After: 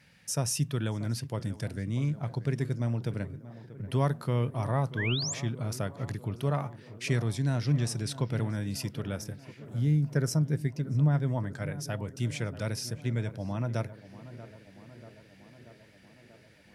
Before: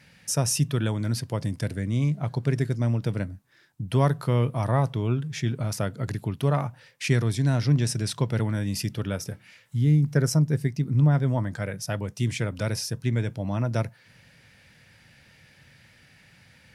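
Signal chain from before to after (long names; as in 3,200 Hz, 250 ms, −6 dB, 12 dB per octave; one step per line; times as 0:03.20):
tape delay 636 ms, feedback 80%, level −13.5 dB, low-pass 1,600 Hz
sound drawn into the spectrogram rise, 0:04.97–0:05.34, 1,500–7,800 Hz −28 dBFS
level −5.5 dB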